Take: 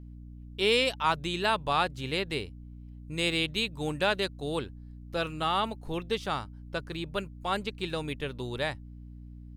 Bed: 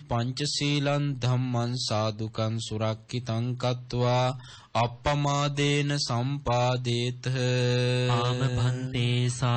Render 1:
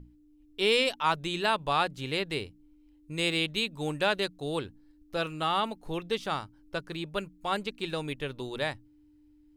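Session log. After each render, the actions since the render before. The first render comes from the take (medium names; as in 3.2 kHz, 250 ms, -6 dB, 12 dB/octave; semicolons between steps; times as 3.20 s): hum notches 60/120/180/240 Hz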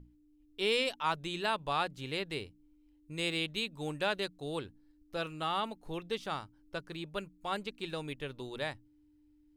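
trim -5.5 dB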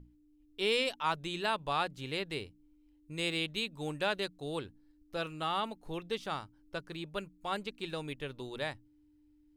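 no audible change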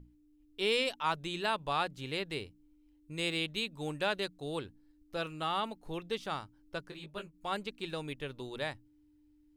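6.90–7.33 s: detune thickener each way 44 cents -> 56 cents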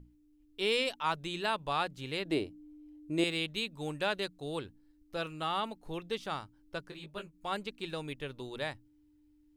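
2.25–3.24 s: small resonant body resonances 320/620 Hz, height 14 dB, ringing for 25 ms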